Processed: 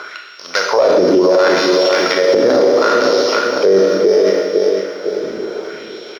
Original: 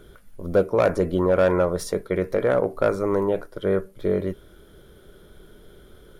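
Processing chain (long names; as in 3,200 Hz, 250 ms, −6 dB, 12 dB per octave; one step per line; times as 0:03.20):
samples sorted by size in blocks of 8 samples
0:01.55–0:02.24: tilt shelving filter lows −5.5 dB
auto-filter high-pass sine 0.71 Hz 270–3,500 Hz
high-frequency loss of the air 170 metres
repeating echo 505 ms, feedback 31%, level −11.5 dB
four-comb reverb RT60 1.1 s, combs from 27 ms, DRR 1.5 dB
boost into a limiter +20 dB
multiband upward and downward compressor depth 40%
level −3 dB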